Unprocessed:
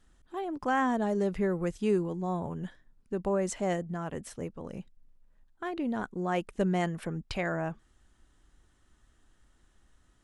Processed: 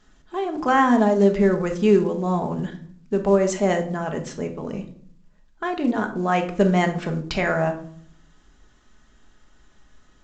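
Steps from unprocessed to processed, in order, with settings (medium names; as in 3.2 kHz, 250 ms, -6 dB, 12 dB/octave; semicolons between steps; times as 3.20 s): bass shelf 130 Hz -7 dB; simulated room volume 700 m³, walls furnished, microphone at 1.4 m; trim +9 dB; µ-law 128 kbps 16 kHz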